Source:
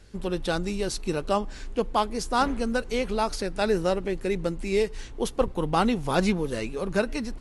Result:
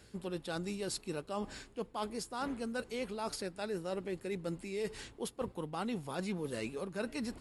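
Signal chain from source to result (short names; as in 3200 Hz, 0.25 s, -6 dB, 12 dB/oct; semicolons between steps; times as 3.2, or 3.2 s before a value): HPF 85 Hz 12 dB/oct; high shelf 8400 Hz +7 dB; notch 6000 Hz, Q 8.1; reverse; compressor 6:1, threshold -33 dBFS, peak gain reduction 15 dB; reverse; gain -2.5 dB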